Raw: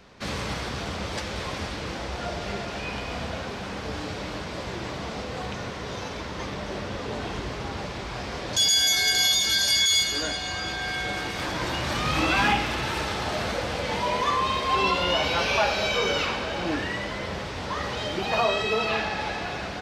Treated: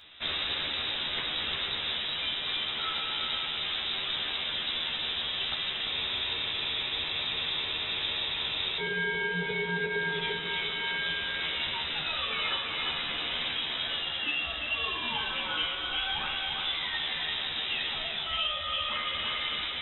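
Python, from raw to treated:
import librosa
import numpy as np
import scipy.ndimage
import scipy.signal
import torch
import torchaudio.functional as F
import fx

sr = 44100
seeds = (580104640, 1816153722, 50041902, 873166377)

p1 = fx.freq_invert(x, sr, carrier_hz=3800)
p2 = fx.doubler(p1, sr, ms=13.0, db=-3.5)
p3 = p2 + fx.echo_single(p2, sr, ms=345, db=-5.5, dry=0)
p4 = fx.rider(p3, sr, range_db=5, speed_s=0.5)
p5 = fx.spec_freeze(p4, sr, seeds[0], at_s=5.89, hold_s=2.91)
y = p5 * 10.0 ** (-6.5 / 20.0)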